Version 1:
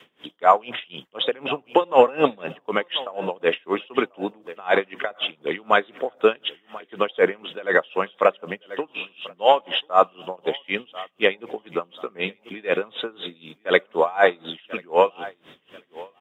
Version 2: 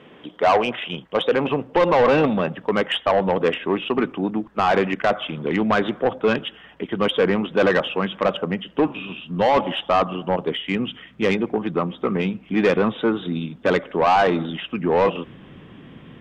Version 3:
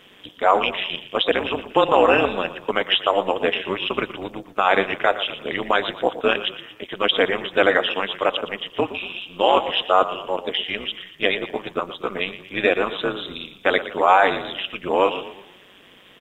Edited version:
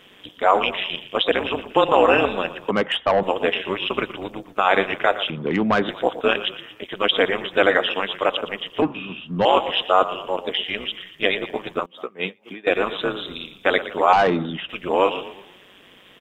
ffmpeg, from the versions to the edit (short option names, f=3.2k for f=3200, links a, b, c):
-filter_complex "[1:a]asplit=4[a][b][c][d];[2:a]asplit=6[e][f][g][h][i][j];[e]atrim=end=2.712[k];[a]atrim=start=2.708:end=3.232[l];[f]atrim=start=3.228:end=5.302[m];[b]atrim=start=5.298:end=5.892[n];[g]atrim=start=5.888:end=8.822[o];[c]atrim=start=8.818:end=9.452[p];[h]atrim=start=9.448:end=11.862[q];[0:a]atrim=start=11.858:end=12.672[r];[i]atrim=start=12.668:end=14.132[s];[d]atrim=start=14.128:end=14.692[t];[j]atrim=start=14.688[u];[k][l]acrossfade=d=0.004:c1=hsin:c2=hsin[v];[v][m]acrossfade=d=0.004:c1=hsin:c2=hsin[w];[w][n]acrossfade=d=0.004:c1=hsin:c2=hsin[x];[x][o]acrossfade=d=0.004:c1=hsin:c2=hsin[y];[y][p]acrossfade=d=0.004:c1=hsin:c2=hsin[z];[z][q]acrossfade=d=0.004:c1=hsin:c2=hsin[aa];[aa][r]acrossfade=d=0.004:c1=hsin:c2=hsin[ab];[ab][s]acrossfade=d=0.004:c1=hsin:c2=hsin[ac];[ac][t]acrossfade=d=0.004:c1=hsin:c2=hsin[ad];[ad][u]acrossfade=d=0.004:c1=hsin:c2=hsin"